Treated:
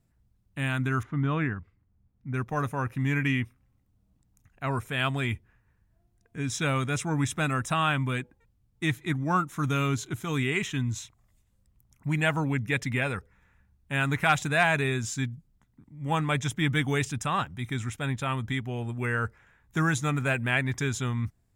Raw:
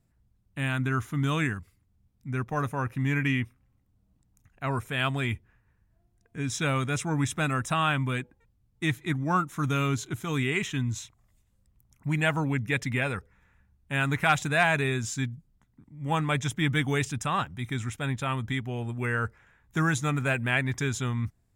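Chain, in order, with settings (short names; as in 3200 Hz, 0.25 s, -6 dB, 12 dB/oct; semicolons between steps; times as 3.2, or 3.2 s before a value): 1.03–2.34 LPF 1900 Hz 12 dB/oct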